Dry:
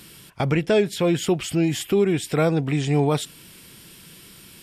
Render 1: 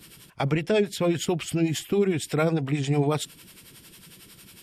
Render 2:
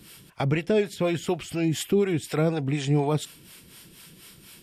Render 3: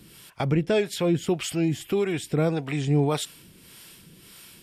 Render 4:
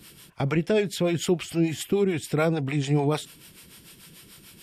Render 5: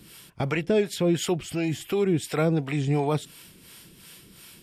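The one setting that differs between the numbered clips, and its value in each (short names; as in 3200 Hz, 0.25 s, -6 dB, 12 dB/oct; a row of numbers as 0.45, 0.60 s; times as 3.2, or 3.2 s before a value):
harmonic tremolo, rate: 11, 4.1, 1.7, 6.8, 2.8 Hz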